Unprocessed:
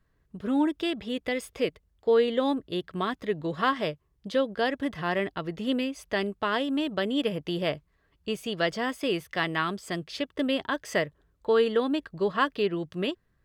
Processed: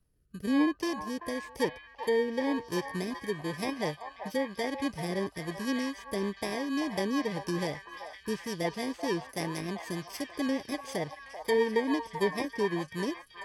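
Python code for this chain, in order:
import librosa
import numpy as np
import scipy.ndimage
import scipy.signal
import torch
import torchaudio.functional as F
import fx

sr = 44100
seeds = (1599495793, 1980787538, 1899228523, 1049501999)

p1 = fx.bit_reversed(x, sr, seeds[0], block=32)
p2 = fx.env_lowpass_down(p1, sr, base_hz=2400.0, full_db=-20.5)
p3 = fx.rotary_switch(p2, sr, hz=1.0, then_hz=6.7, switch_at_s=6.22)
y = p3 + fx.echo_stepped(p3, sr, ms=386, hz=950.0, octaves=0.7, feedback_pct=70, wet_db=-2.5, dry=0)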